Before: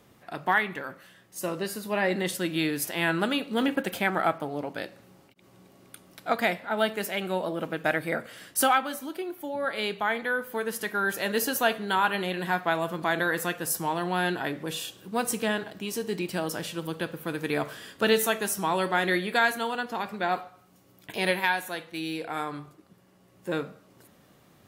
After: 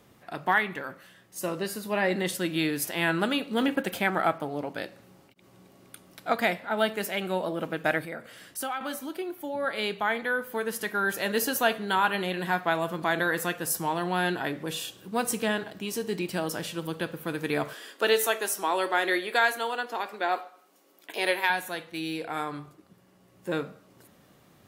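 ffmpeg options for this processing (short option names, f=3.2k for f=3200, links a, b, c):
-filter_complex "[0:a]asettb=1/sr,asplit=3[a][b][c];[a]atrim=end=8.054[d];[b]atrim=start=8.05:end=8.81,asetpts=PTS-STARTPTS,afade=t=in:d=0.004:c=qsin,afade=t=out:st=0.756:d=0.004:c=qsin,acompressor=threshold=-48dB:ratio=1.5:attack=3.2:release=140:knee=1:detection=peak[e];[c]atrim=start=8.806[f];[d][e]acrossfade=d=0.004:c1=hsin:c2=qsin[g];[g][f]acrossfade=d=0.004:c1=qsin:c2=hsin,asettb=1/sr,asplit=3[h][i][j];[h]atrim=end=17.734[k];[i]atrim=start=17.73:end=21.5,asetpts=PTS-STARTPTS,afade=t=in:d=0.004:c=qsin,afade=t=out:st=3.766:d=0.004:c=qsin,highpass=f=300:w=0.5412,highpass=f=300:w=1.3066[l];[j]atrim=start=21.496[m];[k][l]acrossfade=d=0.004:c1=hsin:c2=qsin[n];[n][m]acrossfade=d=0.004:c1=qsin:c2=hsin"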